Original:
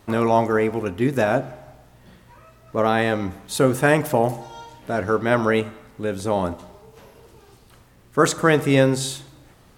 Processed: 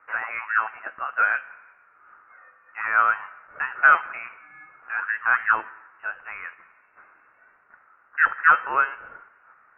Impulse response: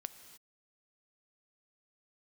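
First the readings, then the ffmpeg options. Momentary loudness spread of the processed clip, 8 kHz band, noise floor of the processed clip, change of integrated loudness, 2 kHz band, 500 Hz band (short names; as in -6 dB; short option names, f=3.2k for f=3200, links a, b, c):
19 LU, under -40 dB, -59 dBFS, -1.5 dB, +6.0 dB, -22.0 dB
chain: -af "highpass=f=1.7k:t=q:w=6,aeval=exprs='1.19*(cos(1*acos(clip(val(0)/1.19,-1,1)))-cos(1*PI/2))+0.0266*(cos(2*acos(clip(val(0)/1.19,-1,1)))-cos(2*PI/2))':c=same,lowpass=f=2.6k:t=q:w=0.5098,lowpass=f=2.6k:t=q:w=0.6013,lowpass=f=2.6k:t=q:w=0.9,lowpass=f=2.6k:t=q:w=2.563,afreqshift=-3100,volume=-4dB"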